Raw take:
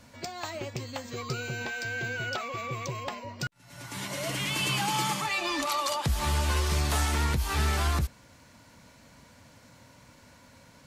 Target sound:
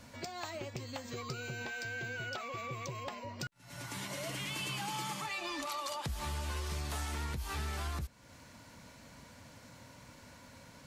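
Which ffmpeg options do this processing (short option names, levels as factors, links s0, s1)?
-af "acompressor=threshold=0.00891:ratio=2.5"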